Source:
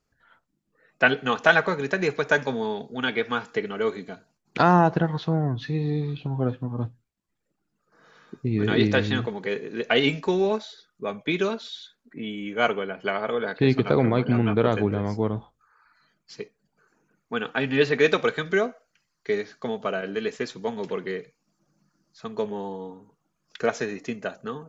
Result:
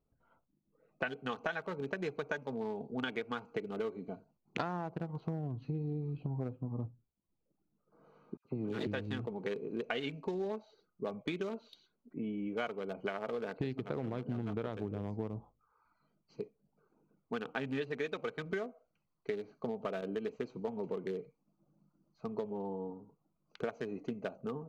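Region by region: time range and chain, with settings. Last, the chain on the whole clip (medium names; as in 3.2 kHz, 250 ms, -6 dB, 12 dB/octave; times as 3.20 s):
8.37–8.87 s: partial rectifier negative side -7 dB + high-pass 150 Hz + phase dispersion lows, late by 78 ms, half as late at 1.9 kHz
whole clip: local Wiener filter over 25 samples; compression 10:1, threshold -31 dBFS; trim -2.5 dB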